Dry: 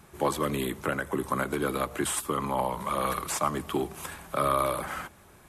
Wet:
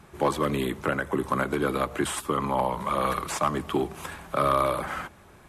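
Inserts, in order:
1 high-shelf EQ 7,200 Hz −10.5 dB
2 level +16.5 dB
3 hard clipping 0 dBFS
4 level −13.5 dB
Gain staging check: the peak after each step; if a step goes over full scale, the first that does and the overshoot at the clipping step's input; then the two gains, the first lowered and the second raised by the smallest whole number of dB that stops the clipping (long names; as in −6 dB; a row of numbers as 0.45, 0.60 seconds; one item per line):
−12.0, +4.5, 0.0, −13.5 dBFS
step 2, 4.5 dB
step 2 +11.5 dB, step 4 −8.5 dB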